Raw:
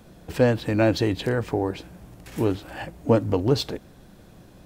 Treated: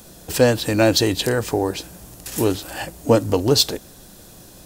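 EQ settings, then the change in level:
bass and treble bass −7 dB, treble +15 dB
low-shelf EQ 140 Hz +6 dB
notch filter 2,200 Hz, Q 19
+4.5 dB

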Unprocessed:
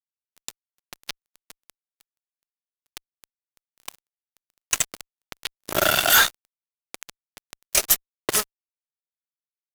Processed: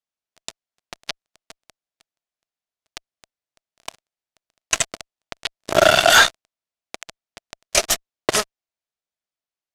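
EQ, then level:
low-pass filter 6,900 Hz 12 dB per octave
parametric band 660 Hz +7 dB 0.34 octaves
+5.0 dB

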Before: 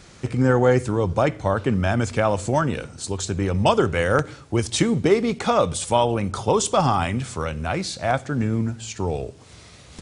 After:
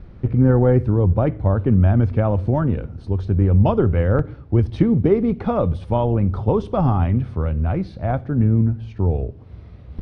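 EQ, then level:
moving average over 6 samples
spectral tilt −4.5 dB per octave
parametric band 140 Hz −4.5 dB 0.27 octaves
−5.0 dB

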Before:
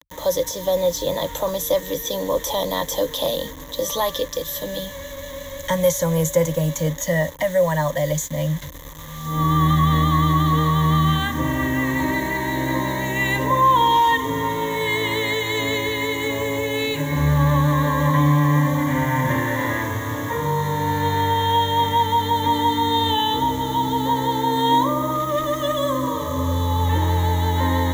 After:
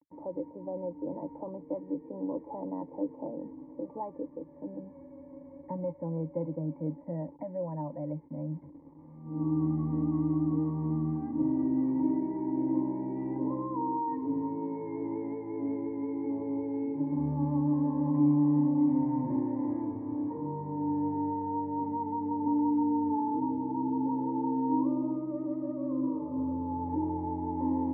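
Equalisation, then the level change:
formant resonators in series u
high-pass filter 130 Hz 12 dB per octave
linear-phase brick-wall low-pass 2,900 Hz
0.0 dB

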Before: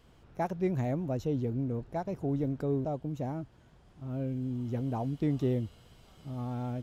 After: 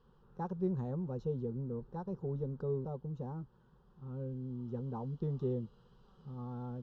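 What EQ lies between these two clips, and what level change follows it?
dynamic equaliser 2,000 Hz, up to −4 dB, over −56 dBFS, Q 1.1
high-frequency loss of the air 240 metres
phaser with its sweep stopped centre 440 Hz, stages 8
−2.0 dB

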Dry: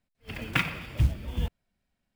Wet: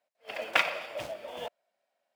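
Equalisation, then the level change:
high-shelf EQ 11,000 Hz −8 dB
dynamic equaliser 5,100 Hz, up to +5 dB, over −48 dBFS, Q 1.1
high-pass with resonance 610 Hz, resonance Q 4.9
0.0 dB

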